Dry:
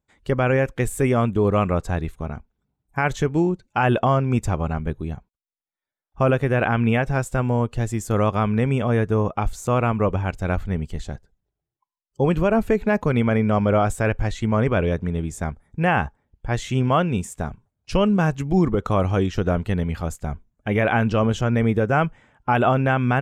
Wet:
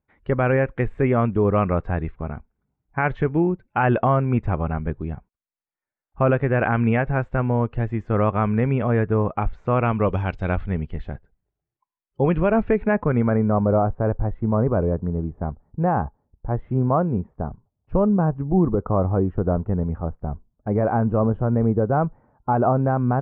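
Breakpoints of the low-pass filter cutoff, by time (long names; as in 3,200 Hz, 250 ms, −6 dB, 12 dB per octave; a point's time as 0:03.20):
low-pass filter 24 dB per octave
0:09.73 2,300 Hz
0:10.11 5,000 Hz
0:10.89 2,500 Hz
0:12.76 2,500 Hz
0:13.68 1,100 Hz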